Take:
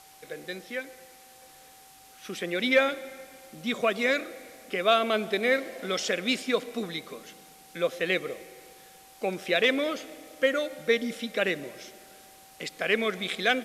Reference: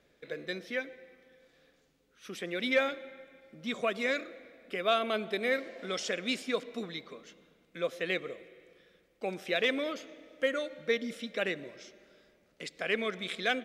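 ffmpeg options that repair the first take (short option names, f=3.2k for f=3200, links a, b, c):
-af "bandreject=f=770:w=30,afwtdn=0.0022,asetnsamples=n=441:p=0,asendcmd='1.42 volume volume -5.5dB',volume=0dB"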